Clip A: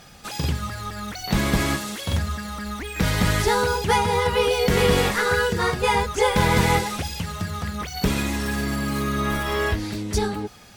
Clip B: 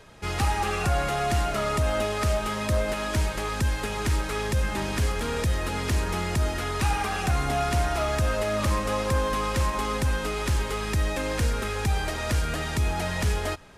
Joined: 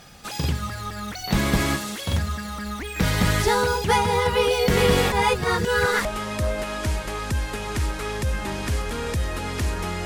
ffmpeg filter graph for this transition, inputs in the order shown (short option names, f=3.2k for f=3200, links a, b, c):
-filter_complex "[0:a]apad=whole_dur=10.05,atrim=end=10.05,asplit=2[a][b];[a]atrim=end=5.122[c];[b]atrim=start=5.118:end=6.052,asetpts=PTS-STARTPTS,areverse[d];[1:a]atrim=start=2.348:end=6.35[e];[c][d]acrossfade=d=0.004:c1=hsin:c2=hsin[f];[f][e]acrossfade=d=0.004:c1=hsin:c2=hsin"